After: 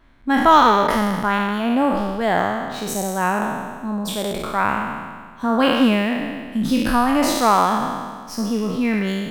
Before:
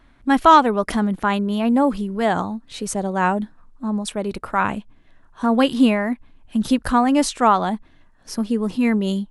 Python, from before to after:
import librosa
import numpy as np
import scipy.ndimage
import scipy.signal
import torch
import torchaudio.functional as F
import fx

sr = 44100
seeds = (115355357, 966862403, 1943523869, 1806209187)

y = fx.spec_trails(x, sr, decay_s=1.65)
y = np.interp(np.arange(len(y)), np.arange(len(y))[::2], y[::2])
y = y * 10.0 ** (-2.5 / 20.0)